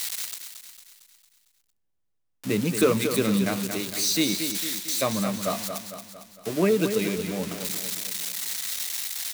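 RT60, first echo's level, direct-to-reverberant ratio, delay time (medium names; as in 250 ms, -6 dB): no reverb, -8.0 dB, no reverb, 227 ms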